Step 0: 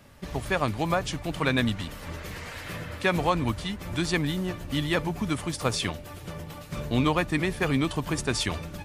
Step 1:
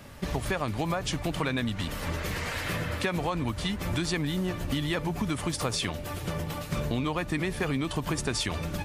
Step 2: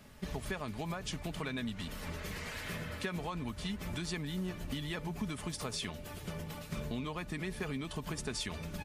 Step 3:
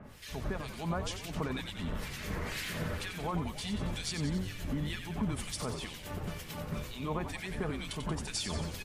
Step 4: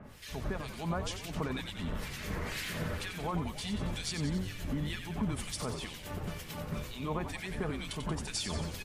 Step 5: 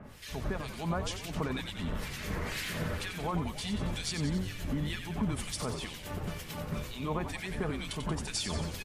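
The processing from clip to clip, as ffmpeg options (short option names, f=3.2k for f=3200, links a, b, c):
-filter_complex "[0:a]asplit=2[a][b];[b]alimiter=limit=-21dB:level=0:latency=1:release=60,volume=0.5dB[c];[a][c]amix=inputs=2:normalize=0,acompressor=threshold=-26dB:ratio=6"
-af "equalizer=f=790:t=o:w=2.2:g=-2.5,aecho=1:1:4.7:0.35,volume=-8.5dB"
-filter_complex "[0:a]alimiter=level_in=7.5dB:limit=-24dB:level=0:latency=1,volume=-7.5dB,acrossover=split=1700[a][b];[a]aeval=exprs='val(0)*(1-1/2+1/2*cos(2*PI*2.1*n/s))':c=same[c];[b]aeval=exprs='val(0)*(1-1/2-1/2*cos(2*PI*2.1*n/s))':c=same[d];[c][d]amix=inputs=2:normalize=0,asplit=9[e][f][g][h][i][j][k][l][m];[f]adelay=91,afreqshift=-87,volume=-8dB[n];[g]adelay=182,afreqshift=-174,volume=-12dB[o];[h]adelay=273,afreqshift=-261,volume=-16dB[p];[i]adelay=364,afreqshift=-348,volume=-20dB[q];[j]adelay=455,afreqshift=-435,volume=-24.1dB[r];[k]adelay=546,afreqshift=-522,volume=-28.1dB[s];[l]adelay=637,afreqshift=-609,volume=-32.1dB[t];[m]adelay=728,afreqshift=-696,volume=-36.1dB[u];[e][n][o][p][q][r][s][t][u]amix=inputs=9:normalize=0,volume=8dB"
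-af anull
-af "aresample=32000,aresample=44100,volume=1.5dB"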